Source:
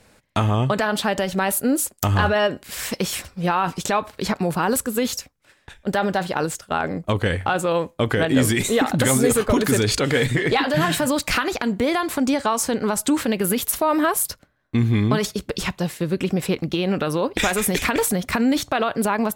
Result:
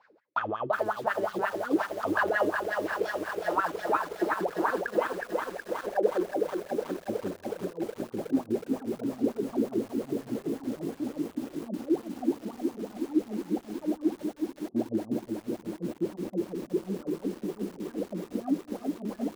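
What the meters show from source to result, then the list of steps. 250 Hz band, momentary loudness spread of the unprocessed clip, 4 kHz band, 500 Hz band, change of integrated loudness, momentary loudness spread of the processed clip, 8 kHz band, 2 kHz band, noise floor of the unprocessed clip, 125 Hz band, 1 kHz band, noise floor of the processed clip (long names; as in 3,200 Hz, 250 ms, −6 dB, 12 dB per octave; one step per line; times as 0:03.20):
−8.5 dB, 7 LU, −21.5 dB, −8.0 dB, −10.0 dB, 7 LU, −26.0 dB, −10.5 dB, −58 dBFS, −20.5 dB, −9.5 dB, −54 dBFS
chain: stylus tracing distortion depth 0.1 ms
low-pass filter 12,000 Hz 24 dB per octave
hum removal 74.44 Hz, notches 7
reversed playback
upward compression, threshold −36 dBFS
reversed playback
low-pass filter sweep 5,000 Hz → 230 Hz, 0:04.71–0:06.47
soft clipping −9.5 dBFS, distortion −19 dB
LFO wah 5.6 Hz 320–1,700 Hz, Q 11
on a send: delay with a low-pass on its return 551 ms, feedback 81%, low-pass 580 Hz, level −23.5 dB
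on the sum: feedback echo at a low word length 368 ms, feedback 80%, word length 9 bits, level −4.5 dB
level +6 dB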